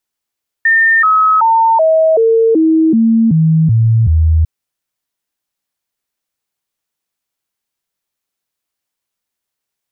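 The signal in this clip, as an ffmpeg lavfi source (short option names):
-f lavfi -i "aevalsrc='0.473*clip(min(mod(t,0.38),0.38-mod(t,0.38))/0.005,0,1)*sin(2*PI*1810*pow(2,-floor(t/0.38)/2)*mod(t,0.38))':d=3.8:s=44100"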